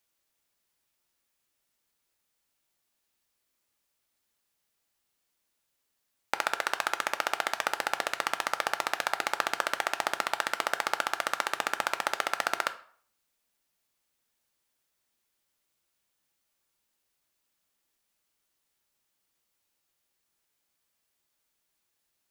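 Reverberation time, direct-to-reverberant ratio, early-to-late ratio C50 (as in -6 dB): 0.55 s, 9.0 dB, 15.0 dB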